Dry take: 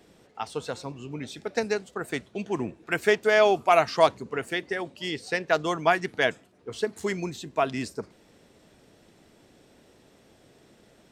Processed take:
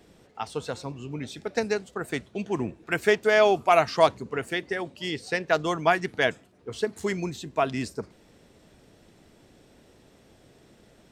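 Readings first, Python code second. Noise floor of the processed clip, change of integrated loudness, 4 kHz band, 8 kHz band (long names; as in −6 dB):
−58 dBFS, +0.5 dB, 0.0 dB, 0.0 dB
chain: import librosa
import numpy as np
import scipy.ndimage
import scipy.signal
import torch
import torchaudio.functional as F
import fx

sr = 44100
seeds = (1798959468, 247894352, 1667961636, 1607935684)

y = fx.low_shelf(x, sr, hz=110.0, db=7.0)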